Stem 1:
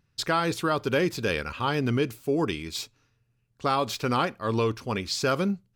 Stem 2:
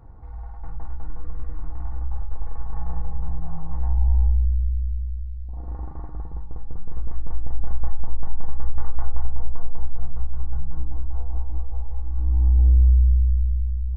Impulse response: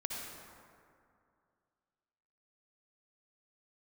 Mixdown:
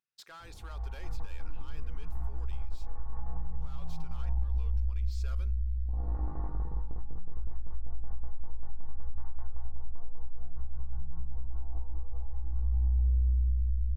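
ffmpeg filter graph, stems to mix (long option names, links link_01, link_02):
-filter_complex "[0:a]highpass=frequency=1200:poles=1,asoftclip=type=hard:threshold=-26.5dB,volume=-18.5dB,asplit=2[link_01][link_02];[1:a]flanger=delay=17.5:depth=3.2:speed=0.56,adelay=400,volume=2dB[link_03];[link_02]apad=whole_len=633560[link_04];[link_03][link_04]sidechaincompress=threshold=-53dB:ratio=8:attack=9.8:release=185[link_05];[link_01][link_05]amix=inputs=2:normalize=0,acompressor=threshold=-26dB:ratio=4"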